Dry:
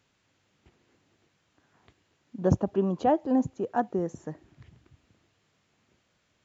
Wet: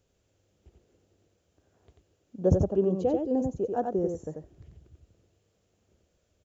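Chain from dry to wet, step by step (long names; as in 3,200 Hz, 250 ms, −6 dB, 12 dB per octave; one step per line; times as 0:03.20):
low-shelf EQ 280 Hz +11 dB
gain on a spectral selection 0:03.00–0:03.35, 530–2,000 Hz −8 dB
octave-band graphic EQ 125/250/500/1,000/2,000/4,000 Hz −10/−9/+5/−10/−10/−6 dB
single-tap delay 90 ms −4.5 dB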